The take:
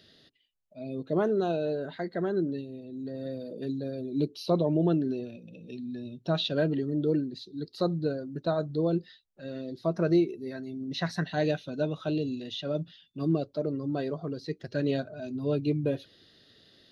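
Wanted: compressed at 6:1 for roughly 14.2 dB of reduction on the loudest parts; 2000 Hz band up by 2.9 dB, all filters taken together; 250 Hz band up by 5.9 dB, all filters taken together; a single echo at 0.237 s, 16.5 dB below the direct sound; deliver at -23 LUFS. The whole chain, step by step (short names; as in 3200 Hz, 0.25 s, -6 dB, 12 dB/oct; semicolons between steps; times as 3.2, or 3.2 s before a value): bell 250 Hz +8 dB; bell 2000 Hz +4 dB; compressor 6:1, threshold -31 dBFS; echo 0.237 s -16.5 dB; gain +12.5 dB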